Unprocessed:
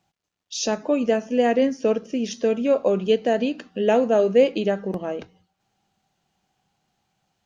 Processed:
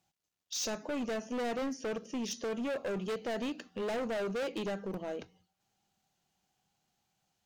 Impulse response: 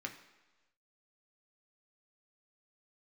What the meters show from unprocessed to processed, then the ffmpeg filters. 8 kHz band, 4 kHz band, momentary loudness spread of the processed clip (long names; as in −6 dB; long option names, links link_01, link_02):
can't be measured, −8.5 dB, 5 LU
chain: -af "aemphasis=mode=production:type=cd,volume=24dB,asoftclip=hard,volume=-24dB,volume=-8.5dB"